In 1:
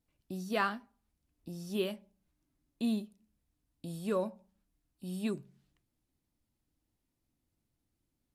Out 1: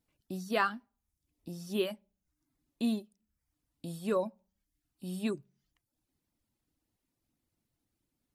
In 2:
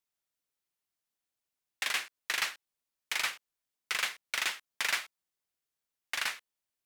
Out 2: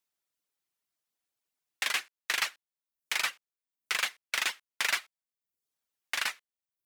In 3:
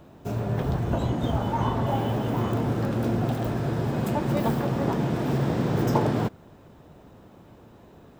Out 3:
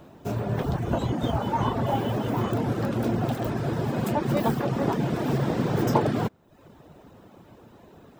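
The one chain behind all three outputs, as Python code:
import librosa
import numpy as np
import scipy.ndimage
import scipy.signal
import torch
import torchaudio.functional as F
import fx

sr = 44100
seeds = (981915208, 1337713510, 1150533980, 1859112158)

y = fx.low_shelf(x, sr, hz=90.0, db=-6.5)
y = fx.dereverb_blind(y, sr, rt60_s=0.62)
y = y * librosa.db_to_amplitude(2.5)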